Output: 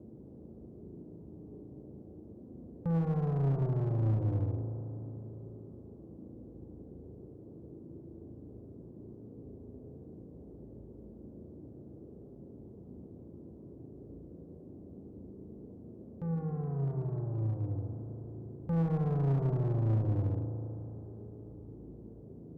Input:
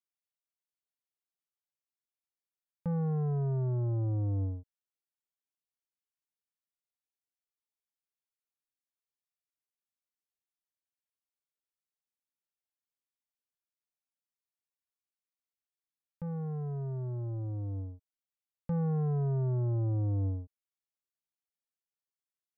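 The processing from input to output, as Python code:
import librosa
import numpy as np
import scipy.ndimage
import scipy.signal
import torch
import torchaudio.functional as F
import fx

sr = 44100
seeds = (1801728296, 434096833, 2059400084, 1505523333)

y = fx.dmg_noise_band(x, sr, seeds[0], low_hz=56.0, high_hz=400.0, level_db=-51.0)
y = fx.rev_spring(y, sr, rt60_s=3.8, pass_ms=(36,), chirp_ms=75, drr_db=2.5)
y = fx.clip_asym(y, sr, top_db=-29.0, bottom_db=-22.0)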